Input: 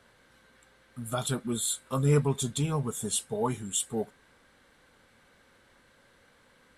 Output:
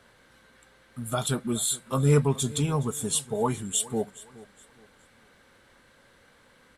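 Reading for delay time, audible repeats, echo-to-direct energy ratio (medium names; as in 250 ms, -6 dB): 418 ms, 2, -19.5 dB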